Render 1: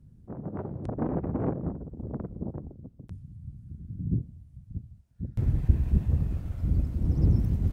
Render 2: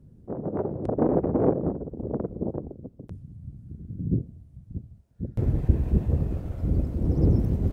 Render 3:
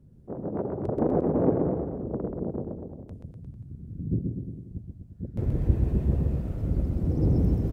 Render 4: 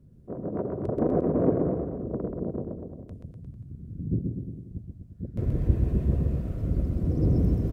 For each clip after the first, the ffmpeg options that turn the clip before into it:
-af "equalizer=f=470:t=o:w=1.8:g=11.5"
-af "aecho=1:1:130|247|352.3|447.1|532.4:0.631|0.398|0.251|0.158|0.1,volume=-3dB"
-af "asuperstop=centerf=840:order=4:qfactor=6.4"

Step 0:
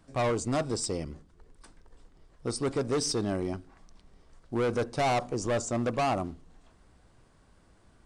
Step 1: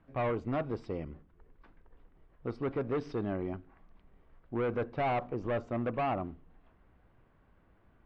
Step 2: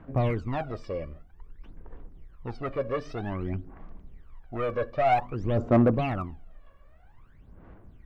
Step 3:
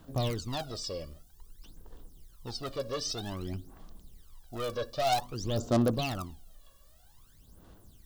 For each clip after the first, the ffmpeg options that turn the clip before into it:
-af "lowpass=f=2.7k:w=0.5412,lowpass=f=2.7k:w=1.3066,volume=-4dB"
-filter_complex "[0:a]aphaser=in_gain=1:out_gain=1:delay=1.8:decay=0.79:speed=0.52:type=sinusoidal,asplit=2[a][b];[b]asoftclip=type=tanh:threshold=-25.5dB,volume=-10dB[c];[a][c]amix=inputs=2:normalize=0"
-af "aexciter=amount=14.5:drive=7.3:freq=3.5k,volume=-5.5dB"

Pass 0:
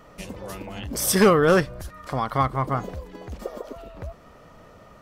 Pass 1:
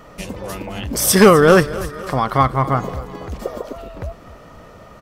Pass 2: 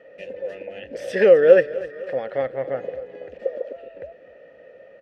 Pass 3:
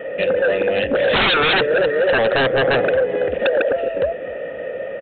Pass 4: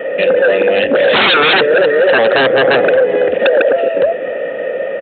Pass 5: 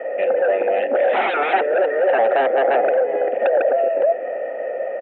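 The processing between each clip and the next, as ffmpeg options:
-af "aecho=1:1:255|510|765|1020:0.141|0.072|0.0367|0.0187,volume=7dB"
-filter_complex "[0:a]asplit=3[a][b][c];[a]bandpass=f=530:t=q:w=8,volume=0dB[d];[b]bandpass=f=1.84k:t=q:w=8,volume=-6dB[e];[c]bandpass=f=2.48k:t=q:w=8,volume=-9dB[f];[d][e][f]amix=inputs=3:normalize=0,aemphasis=mode=reproduction:type=50kf,volume=5dB"
-af "acompressor=threshold=-23dB:ratio=2,aresample=8000,aeval=exprs='0.282*sin(PI/2*7.08*val(0)/0.282)':c=same,aresample=44100,volume=-1.5dB"
-filter_complex "[0:a]highpass=200,asplit=2[a][b];[b]alimiter=limit=-14dB:level=0:latency=1:release=37,volume=2.5dB[c];[a][c]amix=inputs=2:normalize=0,volume=1dB"
-af "highpass=f=300:w=0.5412,highpass=f=300:w=1.3066,equalizer=f=300:t=q:w=4:g=-5,equalizer=f=450:t=q:w=4:g=-6,equalizer=f=740:t=q:w=4:g=9,equalizer=f=1.1k:t=q:w=4:g=-9,equalizer=f=1.6k:t=q:w=4:g=-7,lowpass=f=2k:w=0.5412,lowpass=f=2k:w=1.3066,volume=-5dB"

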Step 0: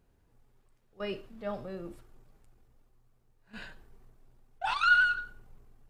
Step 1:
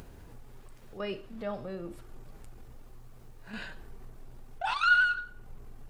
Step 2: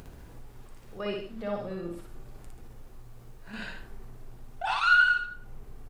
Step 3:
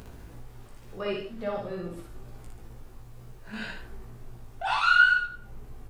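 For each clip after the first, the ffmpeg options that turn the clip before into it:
-af "acompressor=mode=upward:threshold=-33dB:ratio=2.5"
-af "aecho=1:1:58.31|134.1:0.794|0.316"
-af "flanger=delay=16:depth=2.9:speed=2.1,volume=5dB"

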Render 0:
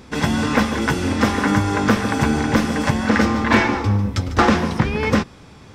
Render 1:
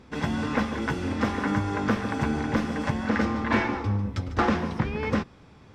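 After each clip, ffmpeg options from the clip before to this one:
-af "lowpass=f=3.2k:p=1,volume=-8dB"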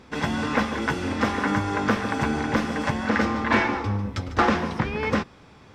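-af "lowshelf=f=340:g=-6,volume=5dB"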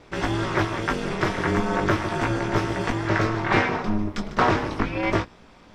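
-af "flanger=delay=17.5:depth=2.9:speed=0.36,aeval=exprs='val(0)*sin(2*PI*110*n/s)':c=same,volume=6dB"

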